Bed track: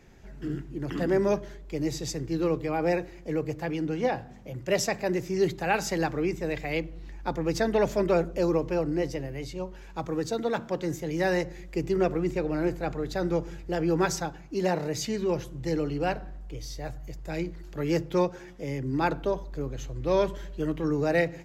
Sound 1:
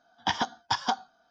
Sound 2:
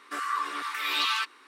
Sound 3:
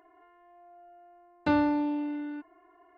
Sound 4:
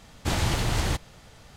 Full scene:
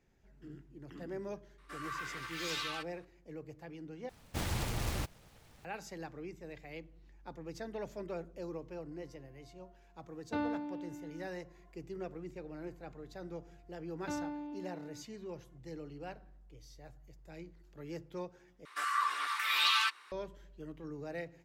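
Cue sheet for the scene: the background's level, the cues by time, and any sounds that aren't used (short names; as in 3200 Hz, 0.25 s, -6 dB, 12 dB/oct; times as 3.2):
bed track -17.5 dB
1.58 add 2 -13.5 dB + echoes that change speed 0.169 s, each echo +5 st, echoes 2
4.09 replace with 4 -10 dB + noise-modulated delay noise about 1200 Hz, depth 0.15 ms
8.86 add 3 -9.5 dB + random-step tremolo
12.61 add 3 -14.5 dB
18.65 replace with 2 -1.5 dB + HPF 780 Hz
not used: 1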